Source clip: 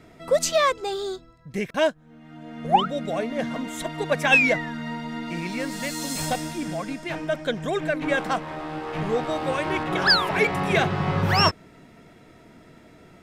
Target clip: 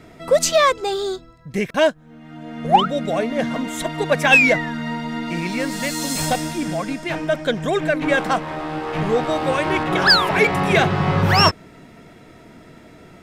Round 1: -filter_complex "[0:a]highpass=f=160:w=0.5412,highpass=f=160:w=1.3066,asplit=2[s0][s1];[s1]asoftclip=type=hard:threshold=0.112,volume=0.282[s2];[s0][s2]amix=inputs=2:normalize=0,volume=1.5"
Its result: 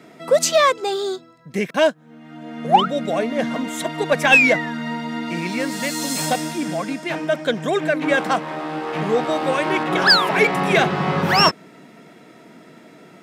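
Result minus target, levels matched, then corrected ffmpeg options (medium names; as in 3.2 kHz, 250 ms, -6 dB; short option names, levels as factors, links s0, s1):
125 Hz band -4.5 dB
-filter_complex "[0:a]asplit=2[s0][s1];[s1]asoftclip=type=hard:threshold=0.112,volume=0.282[s2];[s0][s2]amix=inputs=2:normalize=0,volume=1.5"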